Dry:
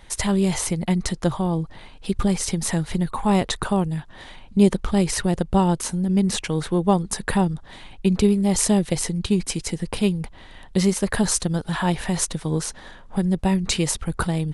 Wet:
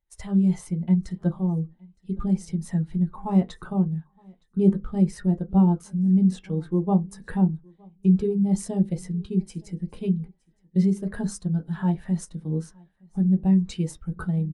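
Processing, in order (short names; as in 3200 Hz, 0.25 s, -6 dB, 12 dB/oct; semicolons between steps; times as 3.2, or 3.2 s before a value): gate -34 dBFS, range -9 dB; feedback echo 0.916 s, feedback 20%, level -19 dB; on a send at -4 dB: reverb RT60 0.20 s, pre-delay 3 ms; on the sum: spectral expander 1.5:1; gain -5.5 dB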